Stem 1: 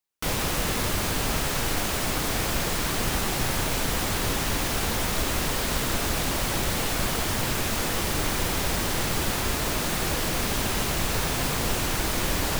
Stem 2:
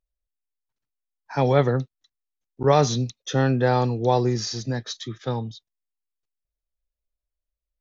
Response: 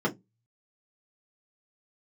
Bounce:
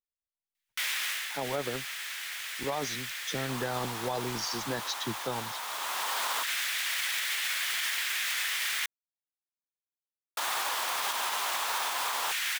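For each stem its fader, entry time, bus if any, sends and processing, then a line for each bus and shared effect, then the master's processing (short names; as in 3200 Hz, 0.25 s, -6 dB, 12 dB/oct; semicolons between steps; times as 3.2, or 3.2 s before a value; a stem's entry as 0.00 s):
-2.5 dB, 0.55 s, muted 8.86–10.37, no send, bell 3400 Hz +4 dB 0.33 oct; LFO high-pass square 0.17 Hz 950–1900 Hz; auto duck -9 dB, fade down 0.30 s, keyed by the second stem
-15.0 dB, 0.00 s, no send, harmonic-percussive split harmonic -15 dB; AGC gain up to 16.5 dB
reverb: off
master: limiter -21.5 dBFS, peak gain reduction 6.5 dB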